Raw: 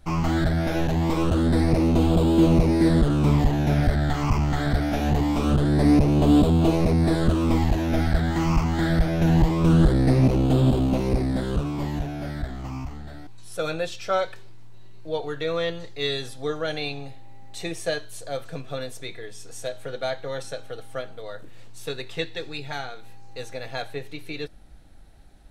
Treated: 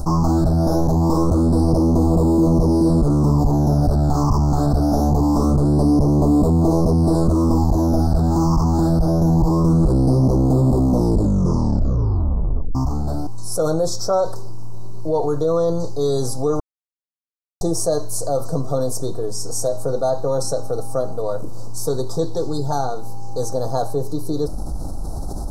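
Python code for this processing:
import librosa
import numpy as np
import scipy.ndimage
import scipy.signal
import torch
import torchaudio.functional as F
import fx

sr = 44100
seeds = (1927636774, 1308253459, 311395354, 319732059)

y = fx.edit(x, sr, fx.tape_stop(start_s=10.86, length_s=1.89),
    fx.silence(start_s=16.6, length_s=1.01), tone=tone)
y = scipy.signal.sosfilt(scipy.signal.ellip(3, 1.0, 80, [1100.0, 5100.0], 'bandstop', fs=sr, output='sos'), y)
y = fx.env_flatten(y, sr, amount_pct=70)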